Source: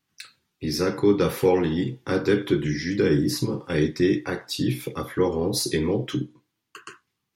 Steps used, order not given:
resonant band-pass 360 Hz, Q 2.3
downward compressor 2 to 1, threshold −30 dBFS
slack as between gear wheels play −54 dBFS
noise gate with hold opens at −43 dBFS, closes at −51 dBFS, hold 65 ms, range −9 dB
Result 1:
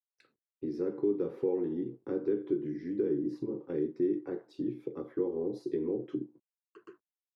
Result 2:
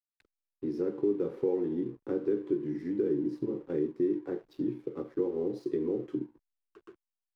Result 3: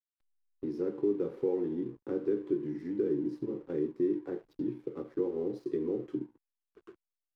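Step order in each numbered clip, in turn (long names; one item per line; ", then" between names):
noise gate with hold, then downward compressor, then slack as between gear wheels, then resonant band-pass
noise gate with hold, then resonant band-pass, then downward compressor, then slack as between gear wheels
downward compressor, then resonant band-pass, then noise gate with hold, then slack as between gear wheels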